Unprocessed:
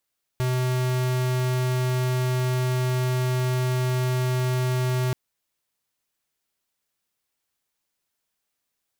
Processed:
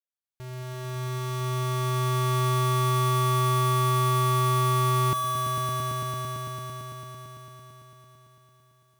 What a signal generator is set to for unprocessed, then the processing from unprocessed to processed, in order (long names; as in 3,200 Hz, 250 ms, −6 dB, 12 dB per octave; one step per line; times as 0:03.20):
tone square 127 Hz −23.5 dBFS 4.73 s
fade in at the beginning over 2.41 s
on a send: echo that builds up and dies away 112 ms, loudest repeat 5, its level −6.5 dB